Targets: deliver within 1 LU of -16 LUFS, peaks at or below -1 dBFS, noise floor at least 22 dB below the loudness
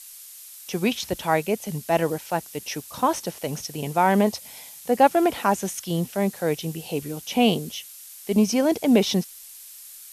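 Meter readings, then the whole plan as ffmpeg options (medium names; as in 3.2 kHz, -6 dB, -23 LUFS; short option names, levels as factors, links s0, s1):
noise floor -44 dBFS; noise floor target -46 dBFS; loudness -24.0 LUFS; peak level -6.0 dBFS; loudness target -16.0 LUFS
-> -af "afftdn=nr=6:nf=-44"
-af "volume=2.51,alimiter=limit=0.891:level=0:latency=1"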